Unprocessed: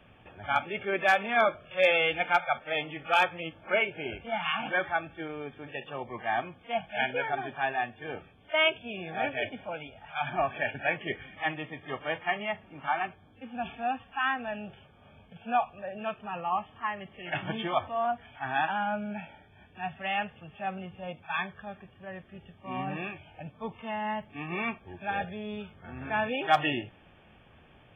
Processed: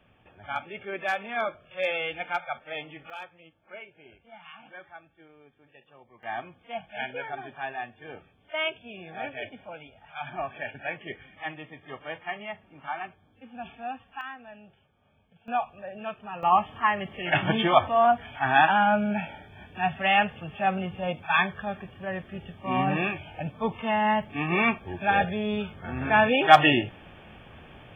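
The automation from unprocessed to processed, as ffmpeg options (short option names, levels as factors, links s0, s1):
-af "asetnsamples=n=441:p=0,asendcmd='3.1 volume volume -17dB;6.23 volume volume -4.5dB;14.21 volume volume -11dB;15.48 volume volume -1dB;16.43 volume volume 9dB',volume=0.562"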